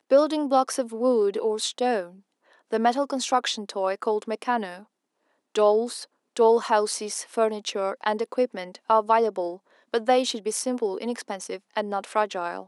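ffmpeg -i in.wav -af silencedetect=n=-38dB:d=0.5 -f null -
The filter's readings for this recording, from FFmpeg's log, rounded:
silence_start: 2.07
silence_end: 2.72 | silence_duration: 0.65
silence_start: 4.80
silence_end: 5.55 | silence_duration: 0.75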